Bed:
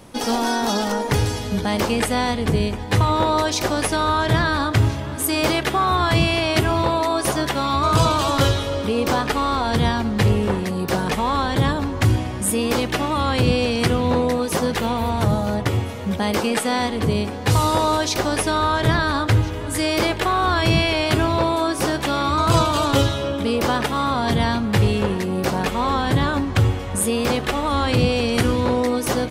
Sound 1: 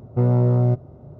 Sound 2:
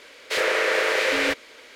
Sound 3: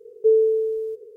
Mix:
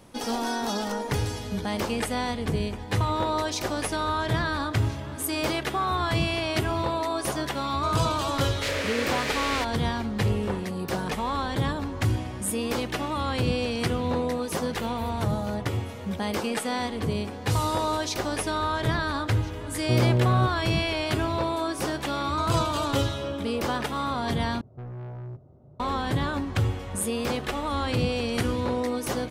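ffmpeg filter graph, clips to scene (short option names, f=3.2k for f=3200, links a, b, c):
-filter_complex "[1:a]asplit=2[a][b];[0:a]volume=-7.5dB[c];[2:a]acrossover=split=140|3000[d][e][f];[e]acompressor=threshold=-27dB:ratio=6:attack=3.2:release=140:knee=2.83:detection=peak[g];[d][g][f]amix=inputs=3:normalize=0[h];[b]asoftclip=type=tanh:threshold=-25dB[i];[c]asplit=2[j][k];[j]atrim=end=24.614[l];[i]atrim=end=1.19,asetpts=PTS-STARTPTS,volume=-10.5dB[m];[k]atrim=start=25.796[n];[h]atrim=end=1.75,asetpts=PTS-STARTPTS,volume=-2.5dB,afade=t=in:d=0.004:c=hsin,afade=t=out:st=1.746:d=0.004:c=hsin,adelay=8310[o];[a]atrim=end=1.19,asetpts=PTS-STARTPTS,volume=-4.5dB,afade=t=in:d=0.004:c=hsin,afade=t=out:st=1.186:d=0.004:c=hsin,adelay=869652S[p];[l][m]acrossfade=d=0.004:c1=hsin:c2=hsin[q];[q][n]acrossfade=d=0.004:c1=hsin:c2=hsin[r];[r][o][p]amix=inputs=3:normalize=0"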